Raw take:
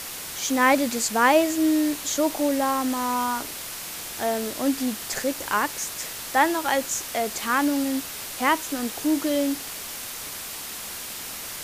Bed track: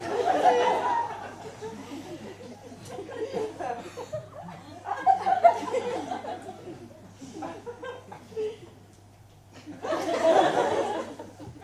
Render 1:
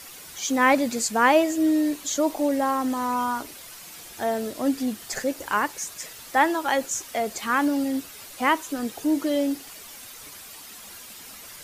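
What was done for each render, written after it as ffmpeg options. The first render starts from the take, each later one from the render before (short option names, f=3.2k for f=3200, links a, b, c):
-af "afftdn=nr=10:nf=-35"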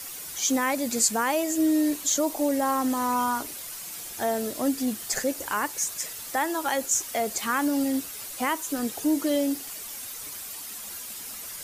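-filter_complex "[0:a]acrossover=split=6100[a][b];[a]alimiter=limit=-16.5dB:level=0:latency=1:release=244[c];[b]acontrast=67[d];[c][d]amix=inputs=2:normalize=0"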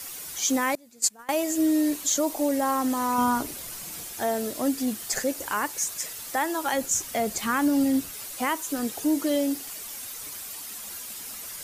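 -filter_complex "[0:a]asettb=1/sr,asplit=3[a][b][c];[a]atrim=end=0.754[d];[b]atrim=start=0.75:end=1.29,asetpts=PTS-STARTPTS,afade=t=in:d=0.004:c=qsin,afade=t=out:st=0.536:d=0.004:c=qsin,agate=range=-25dB:threshold=-22dB:ratio=16:release=100:detection=peak[e];[c]atrim=start=1.286[f];[d][e]acrossfade=d=0.004:c1=hsin:c2=qsin[g];[g][f]acrossfade=d=0.004:c1=qsin:c2=hsin,asettb=1/sr,asplit=3[h][i][j];[h]atrim=end=3.184[k];[i]atrim=start=3.18:end=4.05,asetpts=PTS-STARTPTS,afade=t=in:d=0.004:c=qsin,afade=t=out:st=0.866:d=0.004:c=qsin,lowshelf=f=480:g=9[l];[j]atrim=start=4.046[m];[k][l]acrossfade=d=0.004:c1=hsin:c2=qsin[n];[n][m]acrossfade=d=0.004:c1=qsin:c2=hsin,asettb=1/sr,asplit=3[o][p][q];[o]atrim=end=6.734[r];[p]atrim=start=6.73:end=8.14,asetpts=PTS-STARTPTS,afade=t=in:d=0.004:c=qsin,afade=t=out:st=1.406:d=0.004:c=qsin,bass=f=250:g=8,treble=f=4k:g=-1[s];[q]atrim=start=8.136[t];[r][s]acrossfade=d=0.004:c1=hsin:c2=qsin[u];[u][t]acrossfade=d=0.004:c1=qsin:c2=hsin"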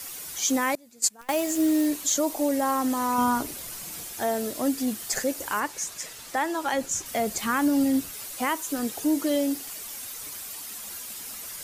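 -filter_complex "[0:a]asettb=1/sr,asplit=3[a][b][c];[a]atrim=end=1.214[d];[b]atrim=start=1.21:end=1.87,asetpts=PTS-STARTPTS,afade=t=in:d=0.004:c=qsin,afade=t=out:st=0.656:d=0.004:c=qsin,acrusher=bits=7:dc=4:mix=0:aa=0.000001[e];[c]atrim=start=1.866[f];[d][e]acrossfade=d=0.004:c1=hsin:c2=qsin[g];[g][f]acrossfade=d=0.004:c1=qsin:c2=hsin,asettb=1/sr,asplit=3[h][i][j];[h]atrim=end=5.604[k];[i]atrim=start=5.6:end=7.06,asetpts=PTS-STARTPTS,afade=t=in:d=0.004:c=qsin,afade=t=out:st=1.456:d=0.004:c=qsin,highshelf=f=9.9k:g=-12[l];[j]atrim=start=7.056[m];[k][l]acrossfade=d=0.004:c1=hsin:c2=qsin[n];[n][m]acrossfade=d=0.004:c1=qsin:c2=hsin"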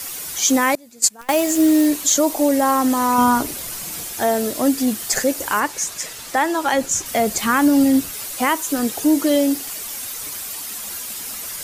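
-af "volume=8dB,alimiter=limit=-3dB:level=0:latency=1"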